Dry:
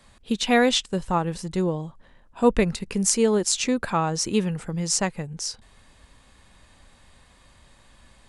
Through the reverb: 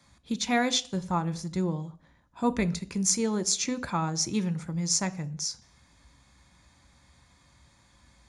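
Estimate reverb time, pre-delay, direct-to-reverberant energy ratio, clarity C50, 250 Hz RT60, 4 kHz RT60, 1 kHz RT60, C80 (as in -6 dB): 0.50 s, 3 ms, 11.5 dB, 19.5 dB, 0.55 s, 0.60 s, 0.50 s, 23.0 dB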